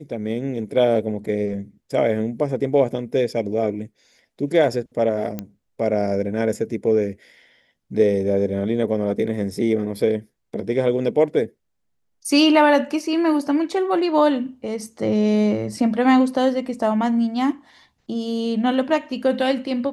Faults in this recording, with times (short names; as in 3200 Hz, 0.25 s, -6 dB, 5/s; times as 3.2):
5.39 pop -14 dBFS